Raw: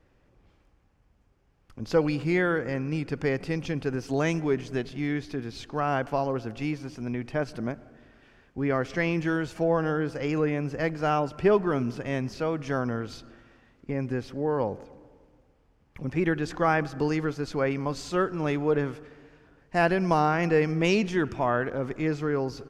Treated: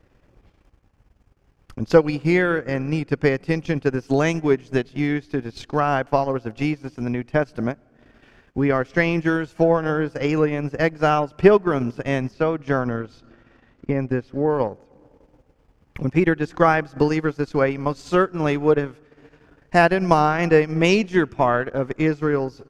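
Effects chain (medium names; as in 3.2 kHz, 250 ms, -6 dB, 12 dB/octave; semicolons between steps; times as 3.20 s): 12.31–14.50 s: low-pass 3.8 kHz 6 dB/octave; transient shaper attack +5 dB, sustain -12 dB; trim +5.5 dB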